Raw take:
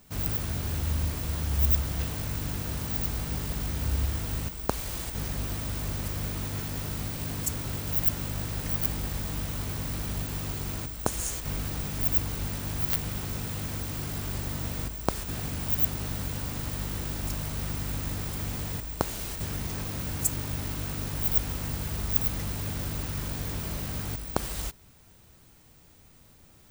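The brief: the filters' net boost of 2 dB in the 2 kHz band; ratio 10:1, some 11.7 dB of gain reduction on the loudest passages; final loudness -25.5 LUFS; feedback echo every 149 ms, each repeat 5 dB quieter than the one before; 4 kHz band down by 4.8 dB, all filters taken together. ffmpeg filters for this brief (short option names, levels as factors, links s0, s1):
-af "equalizer=f=2000:t=o:g=4.5,equalizer=f=4000:t=o:g=-8,acompressor=threshold=0.0251:ratio=10,aecho=1:1:149|298|447|596|745|894|1043:0.562|0.315|0.176|0.0988|0.0553|0.031|0.0173,volume=2.99"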